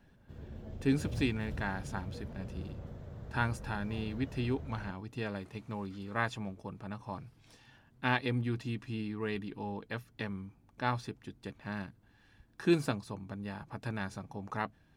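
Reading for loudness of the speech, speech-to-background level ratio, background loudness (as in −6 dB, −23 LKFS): −37.0 LKFS, 8.0 dB, −45.0 LKFS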